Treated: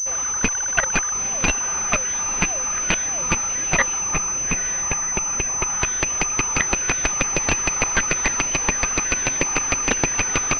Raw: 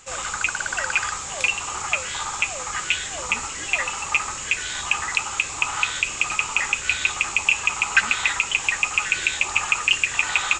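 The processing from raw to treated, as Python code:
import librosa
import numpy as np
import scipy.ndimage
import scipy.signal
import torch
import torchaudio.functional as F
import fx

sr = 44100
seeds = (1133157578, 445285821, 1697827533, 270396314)

p1 = fx.tracing_dist(x, sr, depth_ms=0.35)
p2 = fx.dereverb_blind(p1, sr, rt60_s=0.59)
p3 = fx.rider(p2, sr, range_db=4, speed_s=2.0)
p4 = p2 + (p3 * librosa.db_to_amplitude(2.0))
p5 = fx.cheby_harmonics(p4, sr, harmonics=(7,), levels_db=(-38,), full_scale_db=4.0)
p6 = fx.level_steps(p5, sr, step_db=18)
p7 = fx.air_absorb(p6, sr, metres=230.0, at=(4.0, 5.67))
p8 = p7 + fx.echo_diffused(p7, sr, ms=917, feedback_pct=44, wet_db=-12.5, dry=0)
p9 = fx.pwm(p8, sr, carrier_hz=6100.0)
y = p9 * librosa.db_to_amplitude(3.5)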